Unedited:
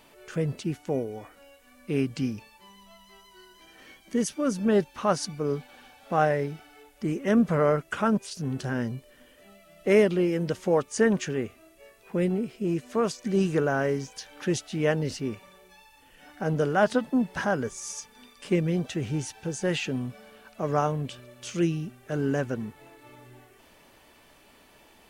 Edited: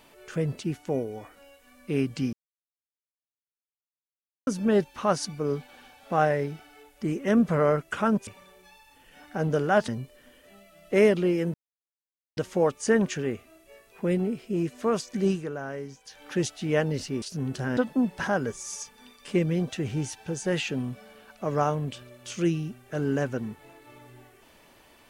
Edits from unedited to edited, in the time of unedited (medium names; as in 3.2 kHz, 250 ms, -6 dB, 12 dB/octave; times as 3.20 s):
2.33–4.47 s: mute
8.27–8.82 s: swap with 15.33–16.94 s
10.48 s: insert silence 0.83 s
13.38–14.33 s: dip -9.5 dB, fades 0.16 s